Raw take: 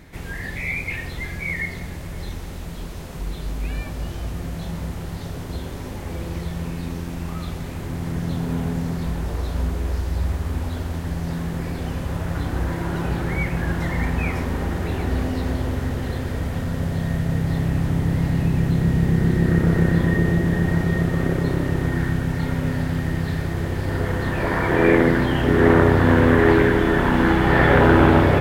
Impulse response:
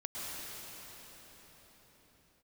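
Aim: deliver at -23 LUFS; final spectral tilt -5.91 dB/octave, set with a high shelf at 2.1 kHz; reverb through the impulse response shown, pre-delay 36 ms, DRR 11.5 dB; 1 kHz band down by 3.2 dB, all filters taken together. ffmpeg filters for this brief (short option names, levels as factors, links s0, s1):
-filter_complex "[0:a]equalizer=f=1000:t=o:g=-6,highshelf=f=2100:g=7.5,asplit=2[s0][s1];[1:a]atrim=start_sample=2205,adelay=36[s2];[s1][s2]afir=irnorm=-1:irlink=0,volume=0.188[s3];[s0][s3]amix=inputs=2:normalize=0,volume=0.794"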